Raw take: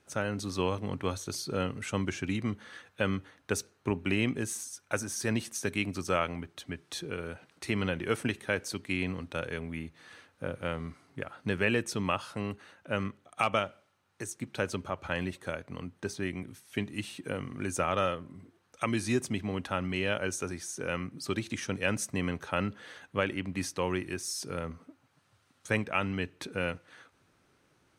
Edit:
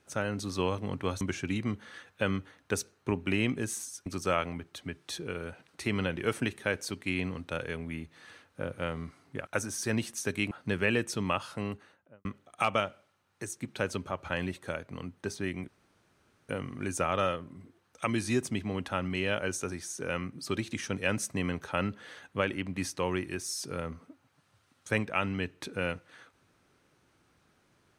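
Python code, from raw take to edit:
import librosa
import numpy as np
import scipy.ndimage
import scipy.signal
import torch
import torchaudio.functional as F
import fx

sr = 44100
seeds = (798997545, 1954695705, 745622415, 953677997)

y = fx.studio_fade_out(x, sr, start_s=12.43, length_s=0.61)
y = fx.edit(y, sr, fx.cut(start_s=1.21, length_s=0.79),
    fx.move(start_s=4.85, length_s=1.04, to_s=11.3),
    fx.room_tone_fill(start_s=16.47, length_s=0.81), tone=tone)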